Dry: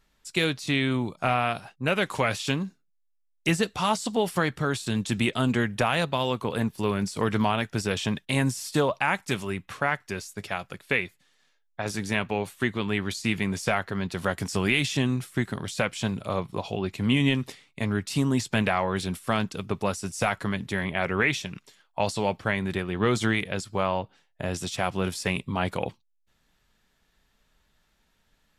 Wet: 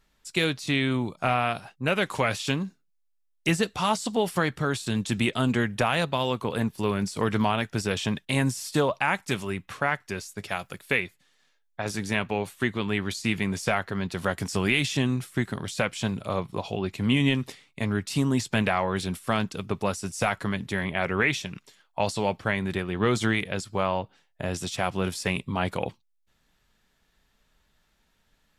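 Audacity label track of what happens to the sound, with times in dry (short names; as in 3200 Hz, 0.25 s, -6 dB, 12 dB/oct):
10.480000	10.990000	high shelf 7400 Hz -> 11000 Hz +12 dB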